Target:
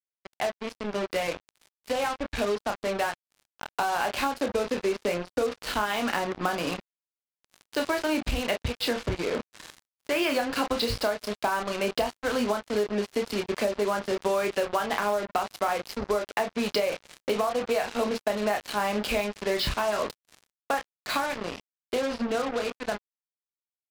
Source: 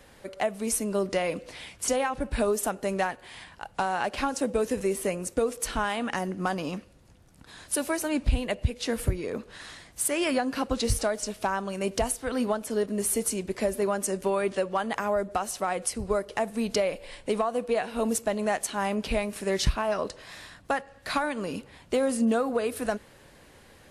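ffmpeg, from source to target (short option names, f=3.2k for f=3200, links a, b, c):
-filter_complex "[0:a]aresample=11025,aresample=44100,acrossover=split=160[a][b];[b]dynaudnorm=f=470:g=17:m=5.5dB[c];[a][c]amix=inputs=2:normalize=0,lowshelf=f=340:g=-7,bandreject=f=1.9k:w=22,aecho=1:1:29|46:0.501|0.158,acrusher=bits=4:mix=0:aa=0.5,acompressor=threshold=-22dB:ratio=6"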